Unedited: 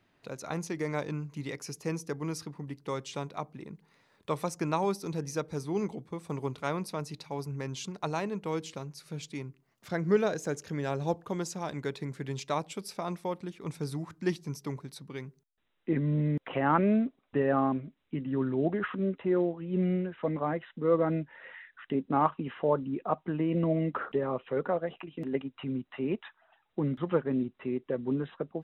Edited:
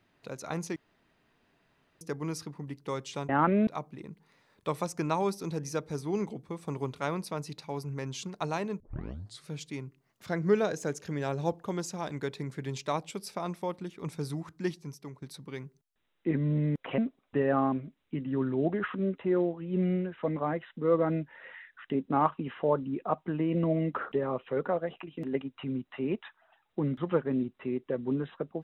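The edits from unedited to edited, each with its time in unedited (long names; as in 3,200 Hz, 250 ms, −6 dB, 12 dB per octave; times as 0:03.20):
0:00.76–0:02.01: fill with room tone
0:08.42: tape start 0.66 s
0:14.01–0:14.84: fade out, to −10.5 dB
0:16.60–0:16.98: move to 0:03.29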